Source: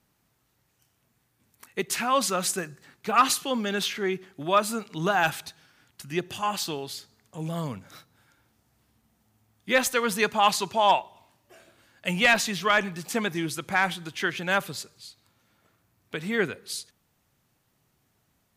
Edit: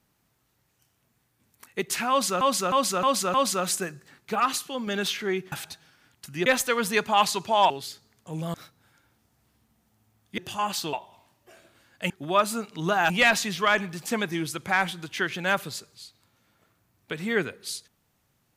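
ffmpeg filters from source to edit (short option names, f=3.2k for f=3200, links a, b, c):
-filter_complex "[0:a]asplit=15[a][b][c][d][e][f][g][h][i][j][k][l][m][n][o];[a]atrim=end=2.412[p];[b]atrim=start=2.098:end=2.412[q];[c]atrim=start=2.098:end=2.412[r];[d]atrim=start=2.098:end=2.412[s];[e]atrim=start=2.098:end=3.162[t];[f]atrim=start=3.158:end=3.632,asetpts=PTS-STARTPTS,volume=-4.5dB[u];[g]atrim=start=3.628:end=4.282[v];[h]atrim=start=5.278:end=6.222[w];[i]atrim=start=9.718:end=10.962[x];[j]atrim=start=6.768:end=7.612[y];[k]atrim=start=7.878:end=9.722[z];[l]atrim=start=6.218:end=6.772[aa];[m]atrim=start=10.958:end=12.132[ab];[n]atrim=start=4.278:end=5.282[ac];[o]atrim=start=12.128[ad];[p][q]acrossfade=d=0.004:c1=hsin:c2=hsin[ae];[ae][r]acrossfade=d=0.004:c1=hsin:c2=hsin[af];[af][s]acrossfade=d=0.004:c1=hsin:c2=hsin[ag];[ag][t]acrossfade=d=0.004:c1=hsin:c2=hsin[ah];[ah][u]acrossfade=d=0.004:c1=hsin:c2=hsin[ai];[ai][v]acrossfade=d=0.004:c1=hsin:c2=hsin[aj];[aj][w]acrossfade=d=0.004:c1=hsin:c2=hsin[ak];[ak][x]acrossfade=d=0.004:c1=hsin:c2=hsin[al];[al][y]acrossfade=d=0.004:c1=hsin:c2=hsin[am];[am][z]acrossfade=d=0.004:c1=hsin:c2=hsin[an];[an][aa]acrossfade=d=0.004:c1=hsin:c2=hsin[ao];[ao][ab]acrossfade=d=0.004:c1=hsin:c2=hsin[ap];[ap][ac]acrossfade=d=0.004:c1=hsin:c2=hsin[aq];[aq][ad]acrossfade=d=0.004:c1=hsin:c2=hsin"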